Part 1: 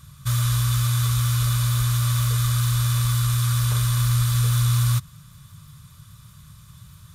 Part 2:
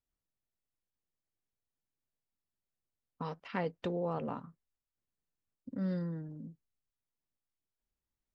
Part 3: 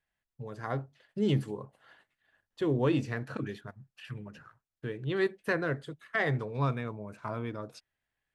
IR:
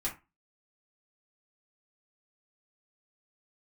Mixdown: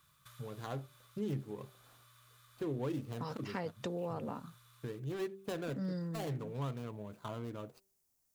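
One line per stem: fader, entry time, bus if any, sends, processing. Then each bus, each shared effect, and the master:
-13.0 dB, 0.00 s, no send, three-band isolator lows -18 dB, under 290 Hz, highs -13 dB, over 3.7 kHz; compression 6:1, threshold -42 dBFS, peak gain reduction 12 dB; auto duck -8 dB, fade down 0.95 s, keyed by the third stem
+2.5 dB, 0.00 s, no send, high-pass 85 Hz 24 dB/octave; resonant high shelf 4.4 kHz +7 dB, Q 1.5
-2.0 dB, 0.00 s, no send, median filter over 25 samples; de-hum 194.1 Hz, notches 3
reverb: none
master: treble shelf 7 kHz +10 dB; compression 2:1, threshold -40 dBFS, peak gain reduction 8.5 dB

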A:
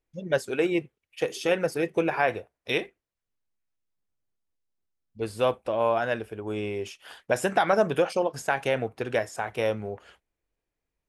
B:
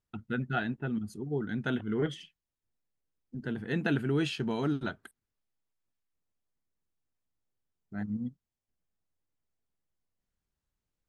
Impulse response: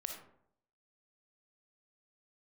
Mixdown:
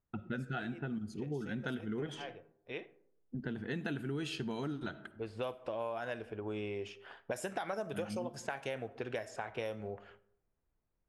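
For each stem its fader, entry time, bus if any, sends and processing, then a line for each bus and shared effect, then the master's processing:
2.18 s -22.5 dB -> 2.74 s -15.5 dB -> 4.81 s -15.5 dB -> 5.49 s -6 dB, 0.00 s, send -10 dB, none
-0.5 dB, 0.00 s, send -7 dB, none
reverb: on, RT60 0.70 s, pre-delay 15 ms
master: level-controlled noise filter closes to 1.4 kHz, open at -25 dBFS; treble shelf 6.6 kHz +7.5 dB; compression 5:1, threshold -36 dBFS, peak gain reduction 14 dB

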